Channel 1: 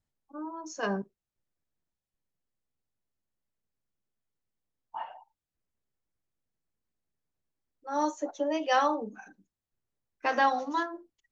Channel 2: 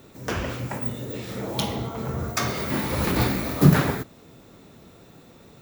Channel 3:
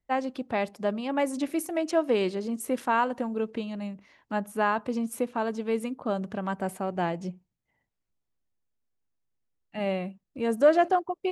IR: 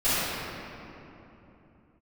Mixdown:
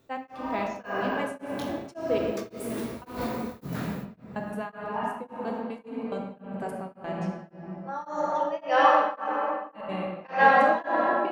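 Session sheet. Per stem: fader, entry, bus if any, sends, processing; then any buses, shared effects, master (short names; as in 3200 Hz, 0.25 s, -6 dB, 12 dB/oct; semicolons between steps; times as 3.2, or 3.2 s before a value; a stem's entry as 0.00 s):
+1.5 dB, 0.00 s, send -9 dB, three-band isolator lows -16 dB, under 440 Hz, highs -14 dB, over 3200 Hz
-10.0 dB, 0.00 s, send -24 dB, chorus 0.39 Hz, delay 18 ms, depth 5.5 ms; auto duck -13 dB, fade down 0.30 s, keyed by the first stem
-5.5 dB, 0.00 s, send -12.5 dB, step gate ".x..x.xx" 179 bpm -24 dB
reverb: on, RT60 3.2 s, pre-delay 3 ms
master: beating tremolo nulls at 1.8 Hz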